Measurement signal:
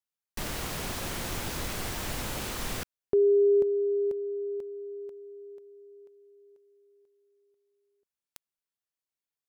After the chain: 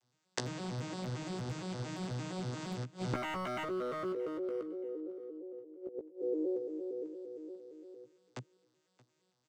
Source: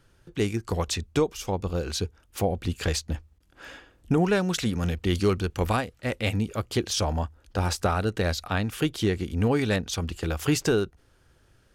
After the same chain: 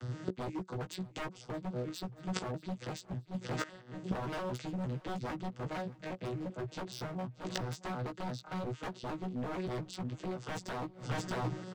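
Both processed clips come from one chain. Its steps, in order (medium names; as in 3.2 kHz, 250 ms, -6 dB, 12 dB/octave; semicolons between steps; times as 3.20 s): vocoder on a broken chord major triad, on B2, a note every 115 ms; treble shelf 5.6 kHz +8.5 dB; in parallel at +1 dB: compression 20:1, threshold -37 dBFS; on the sum: wavefolder -25.5 dBFS; on a send: feedback delay 626 ms, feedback 28%, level -22 dB; on the sum: inverted gate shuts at -38 dBFS, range -24 dB; doubling 16 ms -5.5 dB; trim +15 dB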